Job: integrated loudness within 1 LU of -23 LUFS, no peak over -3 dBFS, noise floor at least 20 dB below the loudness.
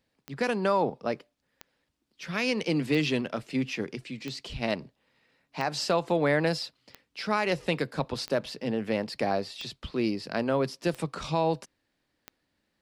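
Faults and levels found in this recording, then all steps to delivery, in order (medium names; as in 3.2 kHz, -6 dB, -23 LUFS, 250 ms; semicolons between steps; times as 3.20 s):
clicks found 10; loudness -29.5 LUFS; peak level -13.5 dBFS; loudness target -23.0 LUFS
-> de-click; trim +6.5 dB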